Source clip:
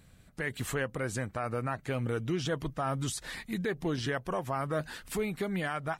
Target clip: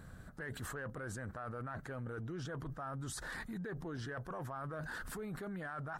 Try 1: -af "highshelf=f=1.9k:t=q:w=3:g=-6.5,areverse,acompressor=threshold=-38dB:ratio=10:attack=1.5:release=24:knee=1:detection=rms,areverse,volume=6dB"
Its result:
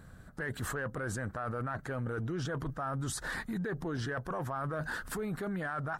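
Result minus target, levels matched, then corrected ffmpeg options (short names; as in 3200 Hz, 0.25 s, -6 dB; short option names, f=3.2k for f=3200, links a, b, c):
compressor: peak gain reduction -7 dB
-af "highshelf=f=1.9k:t=q:w=3:g=-6.5,areverse,acompressor=threshold=-46dB:ratio=10:attack=1.5:release=24:knee=1:detection=rms,areverse,volume=6dB"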